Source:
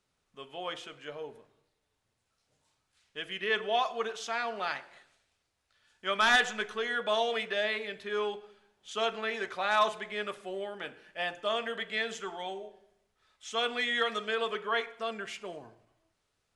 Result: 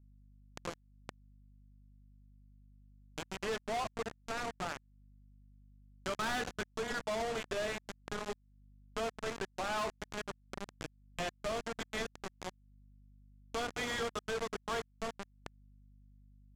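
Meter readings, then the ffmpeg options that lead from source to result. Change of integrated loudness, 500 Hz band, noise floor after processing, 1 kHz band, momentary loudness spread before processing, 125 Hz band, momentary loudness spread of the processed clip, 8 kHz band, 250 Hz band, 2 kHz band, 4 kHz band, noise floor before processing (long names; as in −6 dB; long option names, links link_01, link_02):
−7.5 dB, −6.0 dB, −69 dBFS, −7.5 dB, 15 LU, can't be measured, 12 LU, 0.0 dB, −1.0 dB, −10.0 dB, −10.0 dB, −80 dBFS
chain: -af "bandreject=frequency=60:width_type=h:width=6,bandreject=frequency=120:width_type=h:width=6,bandreject=frequency=180:width_type=h:width=6,bandreject=frequency=240:width_type=h:width=6,bandreject=frequency=300:width_type=h:width=6,bandreject=frequency=360:width_type=h:width=6,bandreject=frequency=420:width_type=h:width=6,bandreject=frequency=480:width_type=h:width=6,bandreject=frequency=540:width_type=h:width=6,aresample=16000,acrusher=bits=4:mix=0:aa=0.000001,aresample=44100,highshelf=frequency=2300:gain=-11,bandreject=frequency=1800:width=10,asoftclip=type=tanh:threshold=-35dB,aeval=exprs='val(0)+0.000141*(sin(2*PI*50*n/s)+sin(2*PI*2*50*n/s)/2+sin(2*PI*3*50*n/s)/3+sin(2*PI*4*50*n/s)/4+sin(2*PI*5*50*n/s)/5)':channel_layout=same,lowshelf=frequency=310:gain=5.5,acompressor=threshold=-56dB:ratio=2,volume=12.5dB"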